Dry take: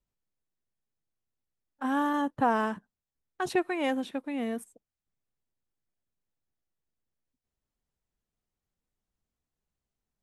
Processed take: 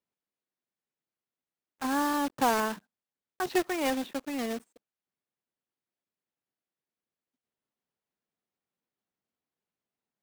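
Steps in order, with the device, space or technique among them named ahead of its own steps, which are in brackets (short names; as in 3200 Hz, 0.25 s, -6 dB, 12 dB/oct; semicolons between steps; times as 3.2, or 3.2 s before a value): early digital voice recorder (BPF 210–3700 Hz; block floating point 3-bit)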